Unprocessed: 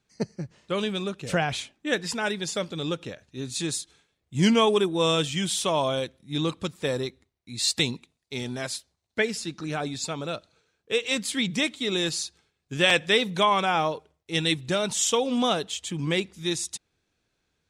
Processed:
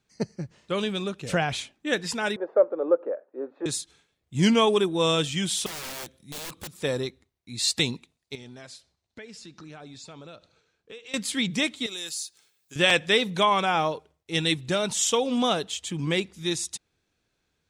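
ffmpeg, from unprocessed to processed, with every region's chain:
-filter_complex "[0:a]asettb=1/sr,asplit=3[a][b][c];[a]atrim=end=2.364[d];[b]atrim=start=2.36:end=3.66,asetpts=PTS-STARTPTS,afade=t=in:d=0.004:c=qsin,afade=t=out:st=1.296:d=0.004:c=qsin,asuperpass=centerf=670:order=8:qfactor=0.57,equalizer=f=550:w=2:g=14[e];[c]atrim=start=3.656[f];[d][e]acrossfade=d=0.004:c1=hsin:c2=qsin[g];[g][f]acrossfade=d=0.004:c1=qsin:c2=hsin,asettb=1/sr,asplit=3[h][i][j];[h]atrim=end=5.664[k];[i]atrim=start=5.66:end=6.83,asetpts=PTS-STARTPTS,afade=t=in:d=0.004:c=qsin,afade=t=out:st=1.166:d=0.004:c=qsin,highshelf=f=4.9k:g=9.5,acompressor=threshold=-42dB:ratio=1.5:attack=3.2:release=140:knee=1:detection=peak,aeval=exprs='(mod(37.6*val(0)+1,2)-1)/37.6':c=same[l];[j]atrim=start=6.826[m];[k][l]acrossfade=d=0.004:c1=hsin:c2=qsin[n];[n][m]acrossfade=d=0.004:c1=qsin:c2=hsin,asettb=1/sr,asplit=3[o][p][q];[o]atrim=end=8.354[r];[p]atrim=start=8.35:end=11.14,asetpts=PTS-STARTPTS,afade=t=in:d=0.004:c=qsin,afade=t=out:st=2.786:d=0.004:c=qsin,lowpass=7.7k,acompressor=threshold=-43dB:ratio=4:attack=3.2:release=140:knee=1:detection=peak,asplit=2[s][t];[t]adelay=75,lowpass=f=4.8k:p=1,volume=-23dB,asplit=2[u][v];[v]adelay=75,lowpass=f=4.8k:p=1,volume=0.41,asplit=2[w][x];[x]adelay=75,lowpass=f=4.8k:p=1,volume=0.41[y];[s][u][w][y]amix=inputs=4:normalize=0,atrim=end_sample=123039[z];[q]atrim=start=11.136[aa];[r][z]acrossfade=d=0.004:c1=hsin:c2=qsin[ab];[ab][aa]acrossfade=d=0.004:c1=qsin:c2=hsin,asettb=1/sr,asplit=3[ac][ad][ae];[ac]atrim=end=11.864[af];[ad]atrim=start=11.86:end=12.76,asetpts=PTS-STARTPTS,afade=t=in:d=0.004:c=qsin,afade=t=out:st=0.896:d=0.004:c=qsin,aemphasis=mode=production:type=riaa,acompressor=threshold=-54dB:ratio=1.5:attack=3.2:release=140:knee=1:detection=peak[ag];[ae]atrim=start=12.756[ah];[af][ag]acrossfade=d=0.004:c1=hsin:c2=qsin[ai];[ai][ah]acrossfade=d=0.004:c1=qsin:c2=hsin"

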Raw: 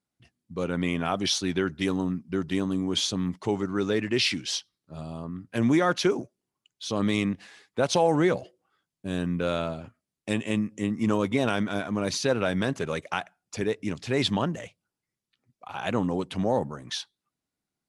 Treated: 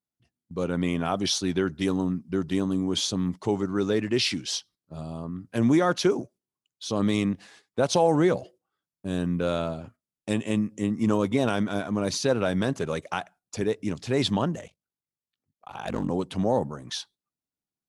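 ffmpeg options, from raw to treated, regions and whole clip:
-filter_complex "[0:a]asettb=1/sr,asplit=3[a][b][c];[a]atrim=end=14.604[d];[b]atrim=start=14.6:end=16.1,asetpts=PTS-STARTPTS,afade=t=in:d=0.004:c=qsin,afade=t=out:st=1.496:d=0.004:c=qsin,asoftclip=type=hard:threshold=-20dB,aeval=exprs='val(0)*sin(2*PI*24*n/s)':c=same[e];[c]atrim=start=16.096[f];[d][e]acrossfade=d=0.004:c1=hsin:c2=qsin[g];[g][f]acrossfade=d=0.004:c1=qsin:c2=hsin,agate=range=-10dB:threshold=-51dB:ratio=16:detection=peak,equalizer=f=2.2k:t=o:w=1.4:g=-5,volume=1.5dB"

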